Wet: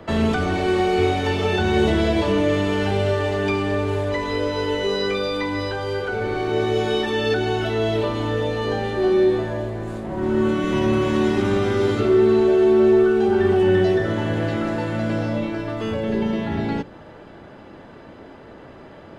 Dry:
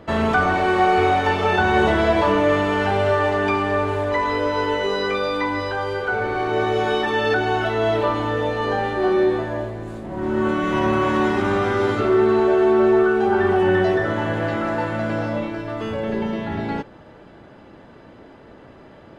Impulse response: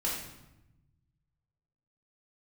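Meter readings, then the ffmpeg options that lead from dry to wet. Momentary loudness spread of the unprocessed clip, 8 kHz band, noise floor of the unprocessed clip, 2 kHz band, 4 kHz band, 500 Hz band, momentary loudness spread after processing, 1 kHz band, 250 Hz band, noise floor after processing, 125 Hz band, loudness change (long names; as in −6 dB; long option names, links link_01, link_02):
9 LU, can't be measured, −45 dBFS, −5.0 dB, +1.5 dB, 0.0 dB, 9 LU, −6.5 dB, +1.5 dB, −42 dBFS, +2.5 dB, −0.5 dB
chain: -filter_complex "[0:a]bandreject=frequency=60:width_type=h:width=6,bandreject=frequency=120:width_type=h:width=6,bandreject=frequency=180:width_type=h:width=6,bandreject=frequency=240:width_type=h:width=6,bandreject=frequency=300:width_type=h:width=6,acrossover=split=110|490|2400[link_01][link_02][link_03][link_04];[link_03]acompressor=threshold=-35dB:ratio=6[link_05];[link_01][link_02][link_05][link_04]amix=inputs=4:normalize=0,volume=3dB"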